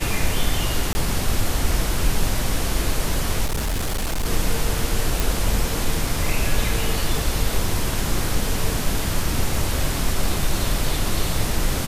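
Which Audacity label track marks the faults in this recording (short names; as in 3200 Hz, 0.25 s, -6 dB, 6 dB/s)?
0.930000	0.950000	gap 20 ms
3.450000	4.260000	clipped -19.5 dBFS
5.200000	5.200000	pop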